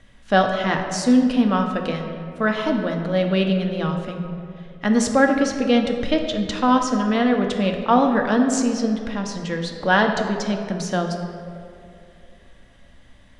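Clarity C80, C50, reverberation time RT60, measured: 6.5 dB, 5.5 dB, 2.6 s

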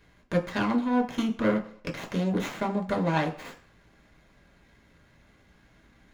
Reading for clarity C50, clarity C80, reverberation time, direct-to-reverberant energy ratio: 13.0 dB, 16.5 dB, not exponential, 1.0 dB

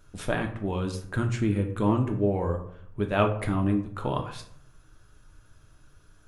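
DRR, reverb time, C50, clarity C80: 3.5 dB, 0.65 s, 10.0 dB, 13.0 dB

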